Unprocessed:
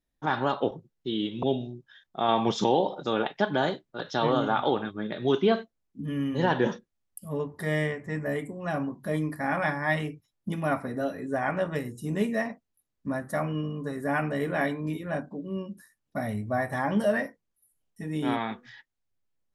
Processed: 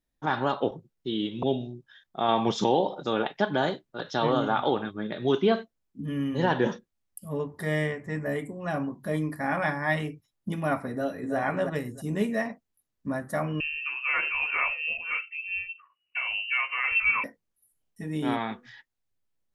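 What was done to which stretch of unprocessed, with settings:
10.91–11.37 s: echo throw 320 ms, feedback 20%, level -5 dB
13.60–17.24 s: frequency inversion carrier 2.9 kHz

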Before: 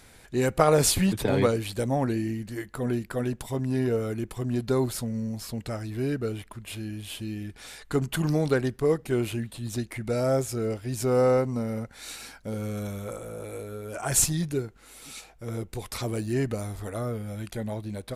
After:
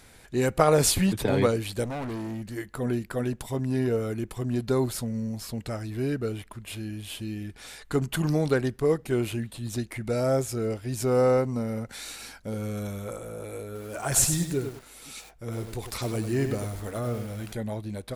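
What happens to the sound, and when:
1.84–2.57 s: hard clipper -31 dBFS
11.89–12.40 s: three bands compressed up and down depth 100%
13.65–17.52 s: bit-crushed delay 99 ms, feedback 35%, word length 7-bit, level -7 dB

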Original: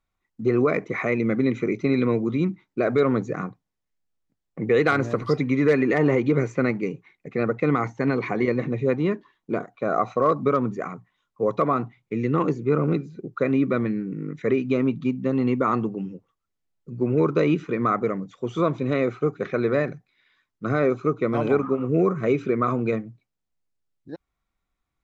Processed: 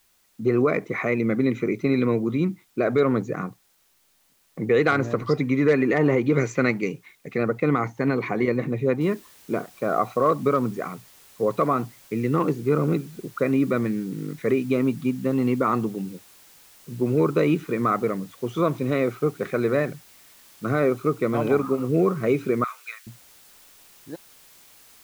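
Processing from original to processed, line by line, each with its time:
6.32–7.38 s: treble shelf 2.1 kHz +10.5 dB
9.01 s: noise floor step -64 dB -52 dB
22.64–23.07 s: high-pass 1.4 kHz 24 dB/octave

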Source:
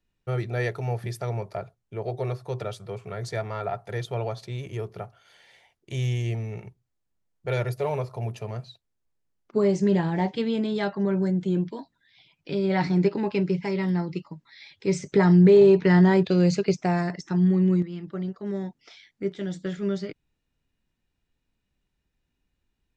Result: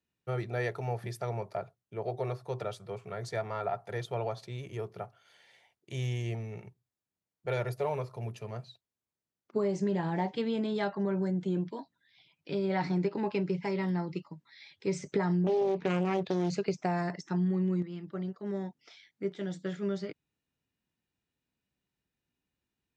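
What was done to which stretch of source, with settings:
7.93–8.52 s: peaking EQ 730 Hz -6 dB
15.44–16.50 s: loudspeaker Doppler distortion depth 0.67 ms
whole clip: high-pass 100 Hz; dynamic bell 870 Hz, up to +4 dB, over -40 dBFS, Q 0.81; compression 6:1, threshold -20 dBFS; trim -5.5 dB

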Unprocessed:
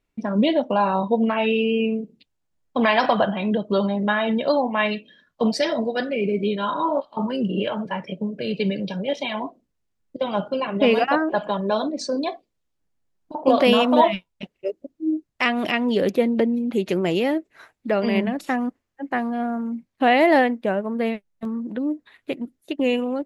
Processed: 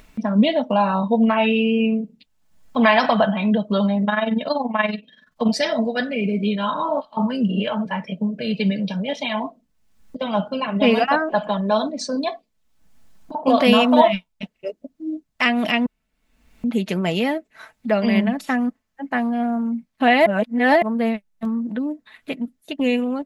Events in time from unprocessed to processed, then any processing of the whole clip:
4.04–5.49 s: AM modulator 21 Hz, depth 55%
15.86–16.64 s: room tone
20.26–20.82 s: reverse
whole clip: peaking EQ 400 Hz -9.5 dB 0.41 oct; comb 4.6 ms, depth 43%; upward compressor, threshold -33 dBFS; trim +2 dB

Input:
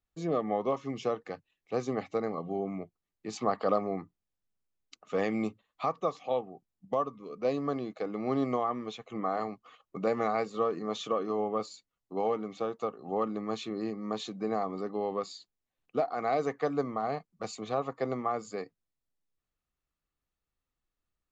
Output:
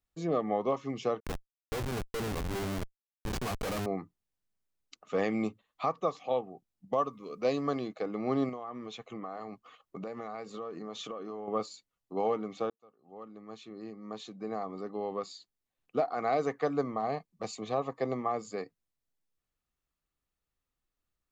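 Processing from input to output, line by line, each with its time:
1.20–3.86 s: Schmitt trigger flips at -36.5 dBFS
6.98–7.88 s: treble shelf 2.1 kHz +7 dB
8.49–11.48 s: compression 5:1, threshold -37 dBFS
12.70–16.00 s: fade in
16.92–18.55 s: band-stop 1.4 kHz, Q 5.2

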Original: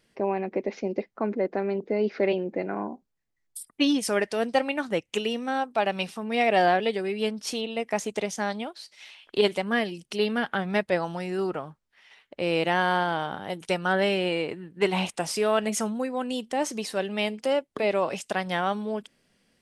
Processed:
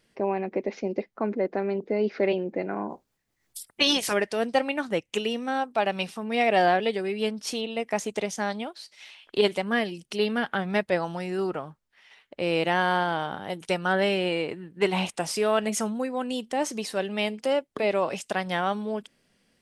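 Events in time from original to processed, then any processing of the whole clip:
2.89–4.12 s: spectral peaks clipped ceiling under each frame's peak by 19 dB

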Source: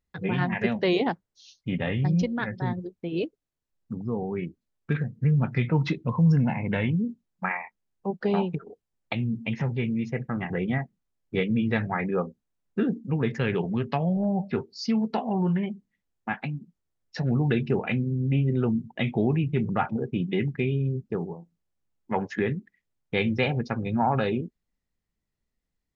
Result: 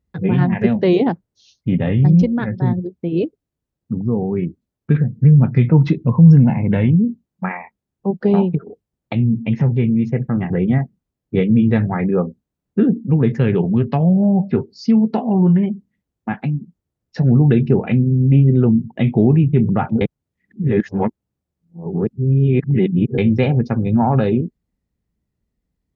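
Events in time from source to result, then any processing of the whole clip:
20.01–23.18 s: reverse
whole clip: high-pass 45 Hz; tilt shelf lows +7 dB, about 640 Hz; trim +6 dB

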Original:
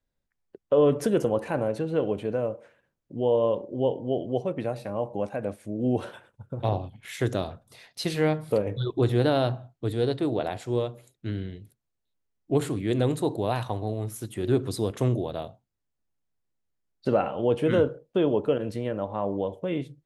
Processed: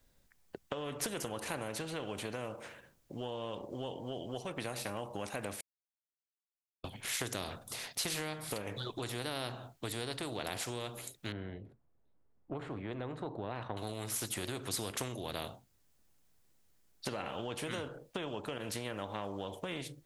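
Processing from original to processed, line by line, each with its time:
5.61–6.84 s: mute
11.32–13.77 s: low-pass 1 kHz
whole clip: treble shelf 4.3 kHz +6.5 dB; compression, threshold -29 dBFS; spectrum-flattening compressor 2:1; trim -2.5 dB

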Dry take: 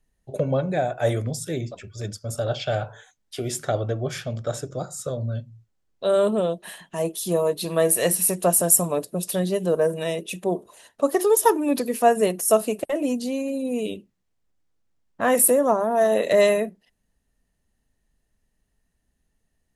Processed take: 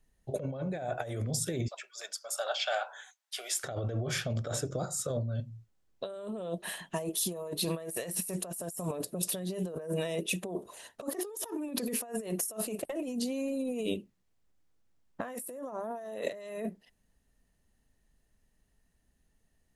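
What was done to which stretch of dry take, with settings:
1.68–3.64 s: high-pass 740 Hz 24 dB/octave
whole clip: compressor with a negative ratio -30 dBFS, ratio -1; trim -6 dB

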